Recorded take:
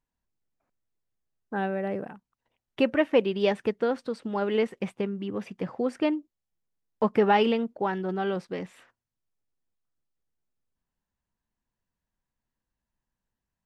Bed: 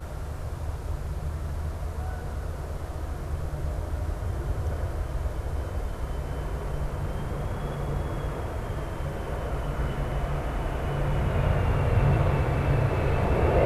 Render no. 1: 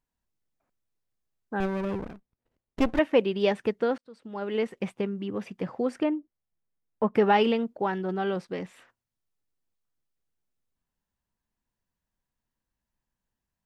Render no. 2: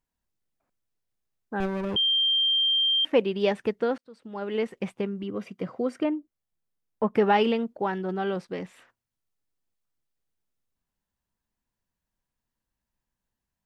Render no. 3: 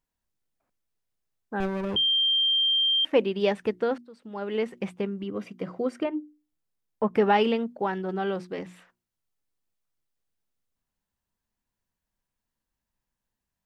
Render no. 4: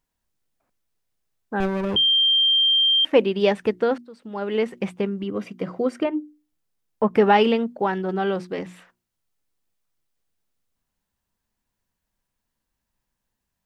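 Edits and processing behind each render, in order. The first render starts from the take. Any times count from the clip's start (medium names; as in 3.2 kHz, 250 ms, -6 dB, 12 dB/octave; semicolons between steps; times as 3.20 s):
1.60–2.99 s: sliding maximum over 33 samples; 3.98–4.81 s: fade in; 6.03–7.15 s: distance through air 450 m
1.96–3.05 s: bleep 3.17 kHz -20 dBFS; 5.23–6.05 s: comb of notches 870 Hz
hum notches 60/120/180/240/300/360 Hz
trim +5 dB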